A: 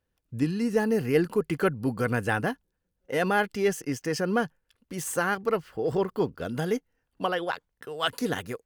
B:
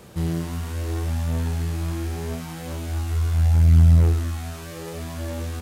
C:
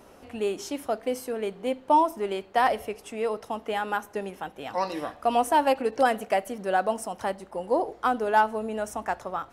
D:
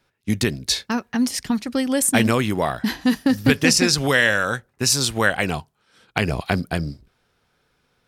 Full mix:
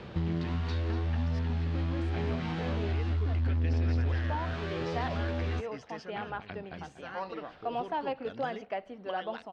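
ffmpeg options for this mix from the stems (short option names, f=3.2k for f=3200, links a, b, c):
-filter_complex "[0:a]crystalizer=i=6:c=0,adelay=1850,volume=-13.5dB[a];[1:a]volume=1.5dB[b];[2:a]adelay=2400,volume=-10dB[c];[3:a]acompressor=mode=upward:threshold=-20dB:ratio=2.5,volume=-17.5dB,asplit=2[d][e];[e]volume=-15dB[f];[a][d]amix=inputs=2:normalize=0,acompressor=threshold=-39dB:ratio=6,volume=0dB[g];[b][c]amix=inputs=2:normalize=0,asoftclip=type=hard:threshold=-16.5dB,acompressor=threshold=-28dB:ratio=6,volume=0dB[h];[f]aecho=0:1:239|478|717|956|1195|1434:1|0.41|0.168|0.0689|0.0283|0.0116[i];[g][h][i]amix=inputs=3:normalize=0,lowpass=f=4k:w=0.5412,lowpass=f=4k:w=1.3066"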